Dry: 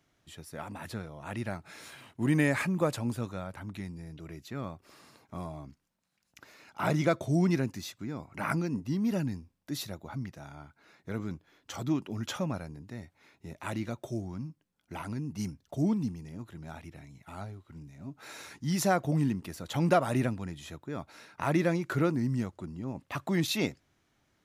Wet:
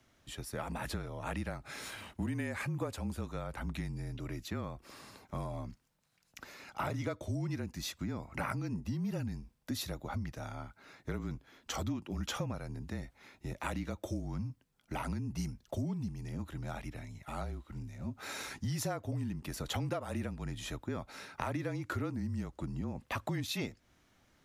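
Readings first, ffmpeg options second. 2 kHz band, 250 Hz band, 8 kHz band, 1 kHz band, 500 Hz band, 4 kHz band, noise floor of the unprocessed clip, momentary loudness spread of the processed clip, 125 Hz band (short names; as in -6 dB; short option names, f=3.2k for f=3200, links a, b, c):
-5.5 dB, -7.5 dB, -3.0 dB, -5.5 dB, -8.0 dB, -2.5 dB, -75 dBFS, 9 LU, -4.5 dB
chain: -af "acompressor=threshold=-37dB:ratio=10,afreqshift=-33,volume=4dB"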